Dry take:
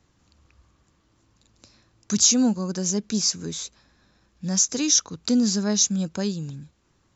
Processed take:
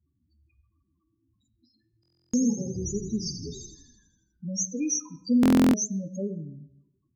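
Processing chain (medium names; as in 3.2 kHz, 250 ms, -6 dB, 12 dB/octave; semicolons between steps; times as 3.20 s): bass shelf 180 Hz -9.5 dB; loudest bins only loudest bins 4; 2.19–4.49 s: frequency-shifting echo 82 ms, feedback 64%, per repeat -35 Hz, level -9 dB; reverberation RT60 0.80 s, pre-delay 6 ms, DRR 8 dB; buffer glitch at 2.01/5.41 s, samples 1024, times 13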